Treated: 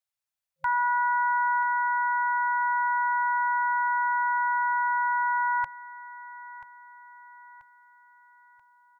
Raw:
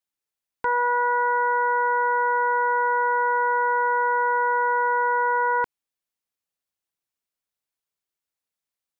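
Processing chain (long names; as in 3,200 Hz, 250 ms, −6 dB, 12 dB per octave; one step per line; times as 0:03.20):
repeating echo 984 ms, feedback 46%, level −15.5 dB
brick-wall band-stop 160–530 Hz
level −2 dB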